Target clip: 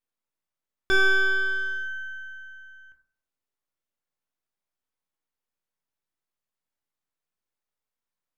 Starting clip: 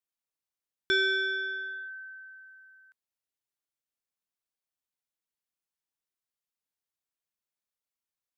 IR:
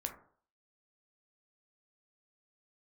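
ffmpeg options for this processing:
-filter_complex "[0:a]aeval=exprs='if(lt(val(0),0),0.251*val(0),val(0))':c=same,highshelf=f=3k:g=-8[a];[1:a]atrim=start_sample=2205,asetrate=42336,aresample=44100[b];[a][b]afir=irnorm=-1:irlink=0,volume=8.5dB"

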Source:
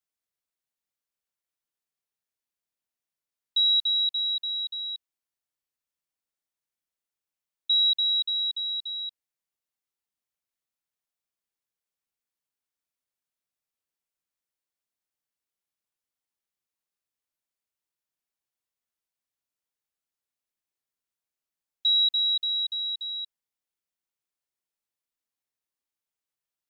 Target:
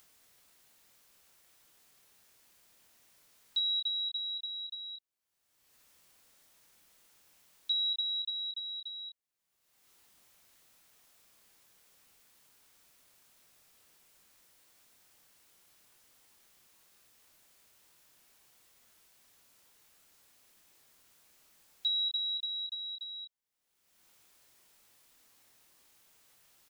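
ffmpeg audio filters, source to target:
-filter_complex "[0:a]acompressor=mode=upward:threshold=-34dB:ratio=2.5,asplit=2[a][b];[b]adelay=26,volume=-8.5dB[c];[a][c]amix=inputs=2:normalize=0,volume=-6.5dB"

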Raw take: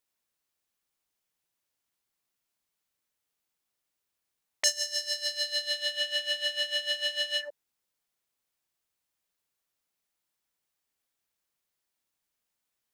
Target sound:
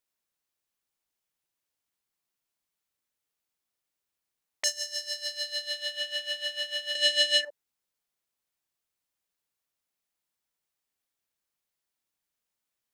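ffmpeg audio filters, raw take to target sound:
-filter_complex "[0:a]asettb=1/sr,asplit=3[a][b][c];[a]atrim=end=6.954[d];[b]atrim=start=6.95:end=7.45,asetpts=PTS-STARTPTS,afade=t=in:d=0.004:c=qsin,afade=t=out:st=0.496:d=0.004:c=qsin,equalizer=f=250:t=o:w=1:g=12,equalizer=f=500:t=o:w=1:g=11,equalizer=f=1k:t=o:w=1:g=-7,equalizer=f=2k:t=o:w=1:g=8,equalizer=f=4k:t=o:w=1:g=7,equalizer=f=8k:t=o:w=1:g=12[e];[c]atrim=start=7.446[f];[d][e]acrossfade=d=0.004:c1=hsin:c2=qsin[g];[g][f]acrossfade=d=0.004:c1=qsin:c2=hsin,volume=-2.5dB"

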